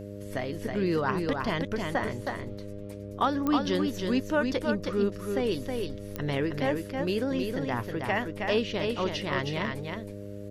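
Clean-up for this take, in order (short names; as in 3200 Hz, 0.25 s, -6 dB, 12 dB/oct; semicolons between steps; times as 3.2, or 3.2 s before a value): de-click; de-hum 101.3 Hz, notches 6; inverse comb 0.318 s -4.5 dB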